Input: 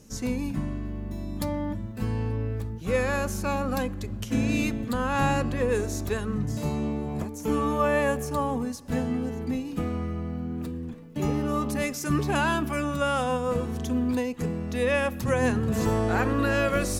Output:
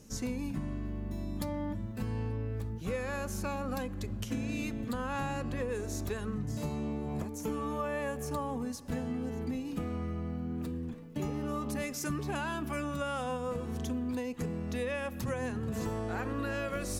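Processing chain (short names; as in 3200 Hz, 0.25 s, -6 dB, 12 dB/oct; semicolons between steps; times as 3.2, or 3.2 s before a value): compressor, threshold -29 dBFS, peak gain reduction 10 dB; gain -2.5 dB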